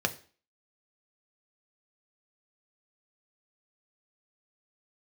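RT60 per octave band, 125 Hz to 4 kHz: 0.35 s, 0.45 s, 0.40 s, 0.40 s, 0.40 s, 0.40 s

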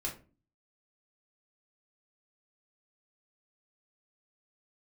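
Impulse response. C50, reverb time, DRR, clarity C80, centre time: 10.0 dB, 0.35 s, -3.0 dB, 16.5 dB, 18 ms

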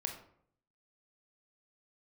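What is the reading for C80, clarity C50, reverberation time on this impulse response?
11.0 dB, 7.5 dB, 0.65 s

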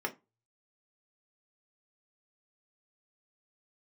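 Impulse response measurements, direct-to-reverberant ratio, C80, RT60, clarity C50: 2.0 dB, 27.0 dB, 0.25 s, 18.5 dB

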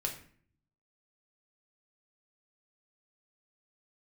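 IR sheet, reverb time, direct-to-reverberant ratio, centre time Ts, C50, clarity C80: 0.50 s, 1.0 dB, 18 ms, 9.0 dB, 12.5 dB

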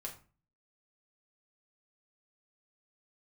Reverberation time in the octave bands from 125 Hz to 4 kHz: 0.60 s, 0.55 s, 0.40 s, 0.35 s, 0.35 s, 0.25 s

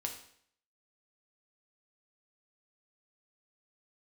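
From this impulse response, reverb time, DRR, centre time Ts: 0.65 s, 2.0 dB, 20 ms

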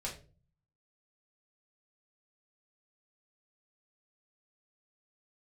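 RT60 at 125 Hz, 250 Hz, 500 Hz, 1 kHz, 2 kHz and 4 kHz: 0.85 s, 0.70 s, 0.45 s, 0.30 s, 0.30 s, 0.25 s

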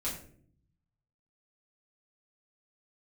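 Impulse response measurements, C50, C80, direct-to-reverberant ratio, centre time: 7.0 dB, 10.0 dB, -8.0 dB, 31 ms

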